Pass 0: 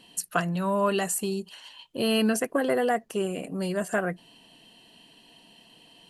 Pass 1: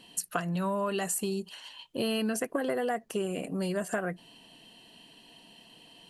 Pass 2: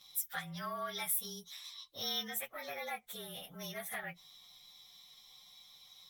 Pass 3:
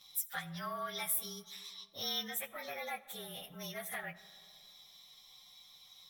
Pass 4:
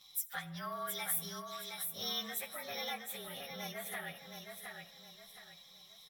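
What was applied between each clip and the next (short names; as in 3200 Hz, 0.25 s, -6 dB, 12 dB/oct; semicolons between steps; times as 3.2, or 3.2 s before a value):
compressor, threshold -27 dBFS, peak gain reduction 8 dB
inharmonic rescaling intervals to 109%; passive tone stack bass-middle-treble 10-0-10; notches 60/120 Hz; gain +3.5 dB
digital reverb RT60 2.3 s, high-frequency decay 0.4×, pre-delay 35 ms, DRR 17 dB
feedback echo 0.717 s, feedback 35%, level -5.5 dB; gain -1 dB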